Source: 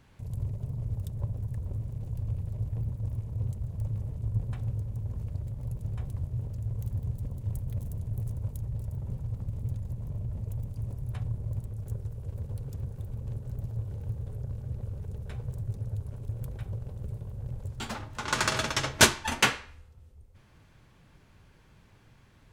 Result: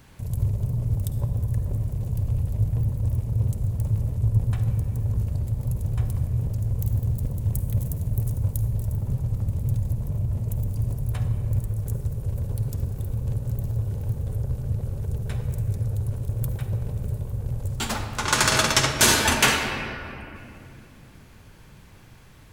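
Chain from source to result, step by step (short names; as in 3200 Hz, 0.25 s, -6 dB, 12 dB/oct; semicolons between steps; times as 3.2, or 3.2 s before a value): high shelf 7800 Hz +11 dB; on a send at -7 dB: reverb RT60 2.7 s, pre-delay 48 ms; on the sum: maximiser +11.5 dB; gain -4 dB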